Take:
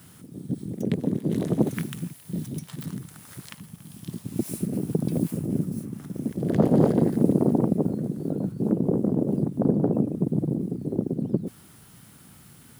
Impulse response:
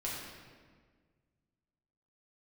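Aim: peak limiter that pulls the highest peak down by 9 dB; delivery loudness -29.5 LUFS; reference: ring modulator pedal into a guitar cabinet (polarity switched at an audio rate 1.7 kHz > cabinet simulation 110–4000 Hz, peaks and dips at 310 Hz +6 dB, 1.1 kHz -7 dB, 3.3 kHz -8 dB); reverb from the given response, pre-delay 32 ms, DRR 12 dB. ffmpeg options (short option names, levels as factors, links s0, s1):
-filter_complex "[0:a]alimiter=limit=0.211:level=0:latency=1,asplit=2[s0][s1];[1:a]atrim=start_sample=2205,adelay=32[s2];[s1][s2]afir=irnorm=-1:irlink=0,volume=0.178[s3];[s0][s3]amix=inputs=2:normalize=0,aeval=exprs='val(0)*sgn(sin(2*PI*1700*n/s))':c=same,highpass=110,equalizer=f=310:t=q:w=4:g=6,equalizer=f=1100:t=q:w=4:g=-7,equalizer=f=3300:t=q:w=4:g=-8,lowpass=f=4000:w=0.5412,lowpass=f=4000:w=1.3066,volume=0.708"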